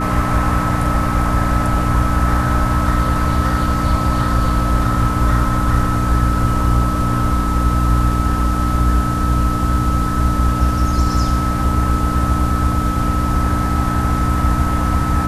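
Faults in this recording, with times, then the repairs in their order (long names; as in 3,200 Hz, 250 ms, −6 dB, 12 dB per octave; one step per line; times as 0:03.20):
mains hum 60 Hz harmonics 5 −20 dBFS
whistle 1,300 Hz −22 dBFS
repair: notch filter 1,300 Hz, Q 30
hum removal 60 Hz, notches 5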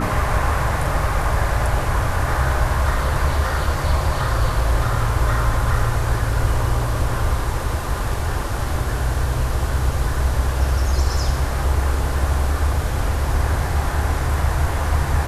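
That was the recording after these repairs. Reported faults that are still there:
none of them is left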